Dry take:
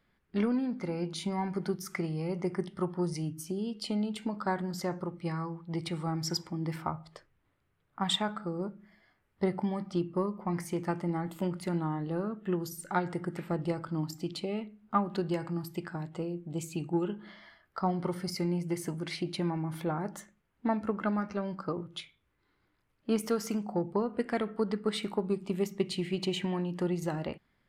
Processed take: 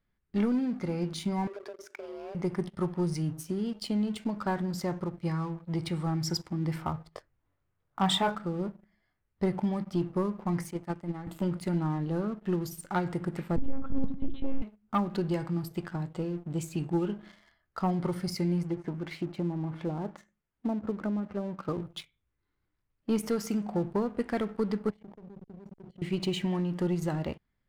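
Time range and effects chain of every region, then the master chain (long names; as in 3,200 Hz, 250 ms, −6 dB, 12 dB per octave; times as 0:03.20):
0:01.47–0:02.35: downward compressor 5 to 1, threshold −39 dBFS + frequency shifter +210 Hz + high-frequency loss of the air 69 metres
0:07.15–0:08.35: parametric band 720 Hz +6.5 dB 2.1 octaves + double-tracking delay 21 ms −4.5 dB
0:10.71–0:11.27: high-pass filter 120 Hz 24 dB per octave + noise gate −30 dBFS, range −9 dB
0:13.56–0:14.62: tilt shelving filter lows +8 dB, about 820 Hz + one-pitch LPC vocoder at 8 kHz 270 Hz
0:18.63–0:21.69: treble cut that deepens with the level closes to 530 Hz, closed at −27.5 dBFS + low-shelf EQ 140 Hz −8 dB
0:24.90–0:26.02: output level in coarse steps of 23 dB + slack as between gear wheels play −52.5 dBFS + moving average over 35 samples
whole clip: low-shelf EQ 120 Hz +11.5 dB; leveller curve on the samples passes 2; level −7.5 dB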